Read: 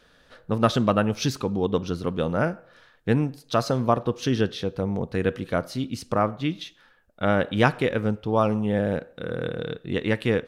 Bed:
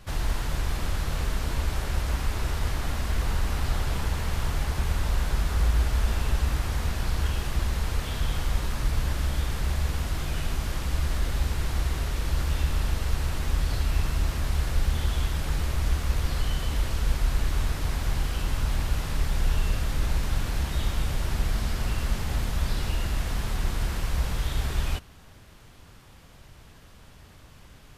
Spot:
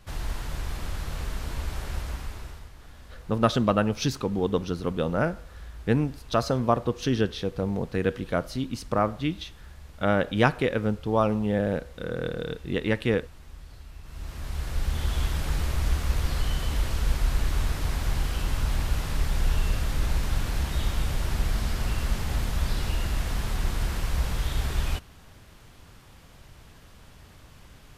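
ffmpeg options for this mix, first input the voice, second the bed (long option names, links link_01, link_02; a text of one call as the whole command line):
ffmpeg -i stem1.wav -i stem2.wav -filter_complex "[0:a]adelay=2800,volume=-1.5dB[link_01];[1:a]volume=15dB,afade=type=out:start_time=1.95:duration=0.74:silence=0.177828,afade=type=in:start_time=14.03:duration=1.21:silence=0.105925[link_02];[link_01][link_02]amix=inputs=2:normalize=0" out.wav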